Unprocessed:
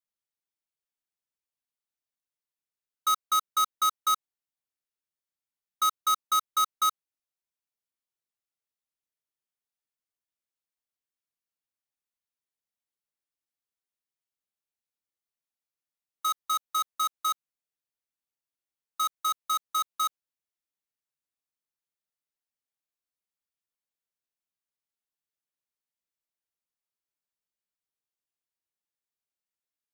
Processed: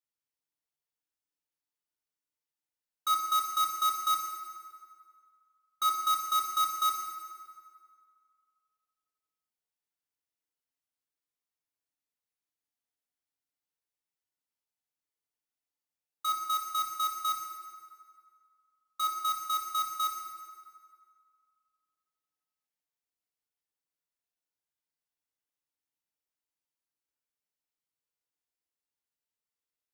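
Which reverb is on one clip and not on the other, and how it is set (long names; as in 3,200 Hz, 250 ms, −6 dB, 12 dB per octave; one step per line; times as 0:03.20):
feedback delay network reverb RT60 2.2 s, low-frequency decay 0.7×, high-frequency decay 0.65×, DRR −1.5 dB
level −5 dB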